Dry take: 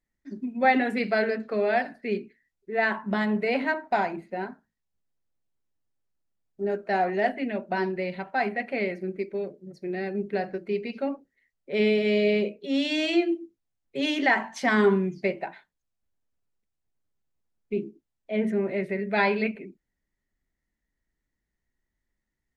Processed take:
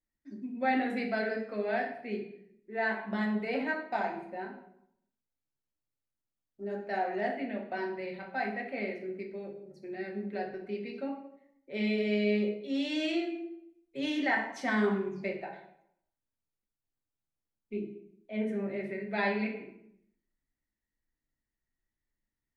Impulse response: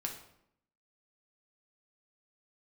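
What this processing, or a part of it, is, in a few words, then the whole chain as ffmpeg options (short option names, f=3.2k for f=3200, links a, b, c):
bathroom: -filter_complex "[1:a]atrim=start_sample=2205[a];[0:a][a]afir=irnorm=-1:irlink=0,volume=-7.5dB"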